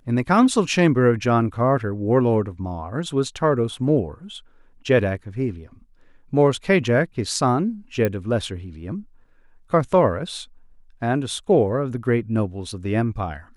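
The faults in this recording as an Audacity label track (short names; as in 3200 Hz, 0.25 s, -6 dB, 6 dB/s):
8.050000	8.050000	pop -10 dBFS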